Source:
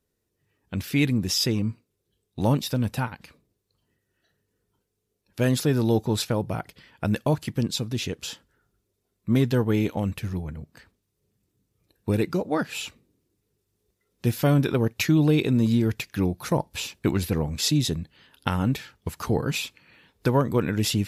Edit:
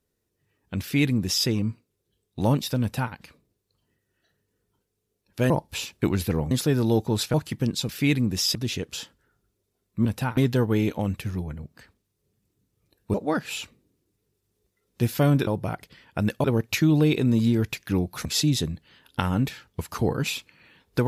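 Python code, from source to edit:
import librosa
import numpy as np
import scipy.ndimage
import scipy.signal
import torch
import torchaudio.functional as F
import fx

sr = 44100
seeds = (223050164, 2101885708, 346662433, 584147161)

y = fx.edit(x, sr, fx.duplicate(start_s=0.81, length_s=0.66, to_s=7.85),
    fx.duplicate(start_s=2.81, length_s=0.32, to_s=9.35),
    fx.move(start_s=6.33, length_s=0.97, to_s=14.71),
    fx.cut(start_s=12.12, length_s=0.26),
    fx.move(start_s=16.52, length_s=1.01, to_s=5.5), tone=tone)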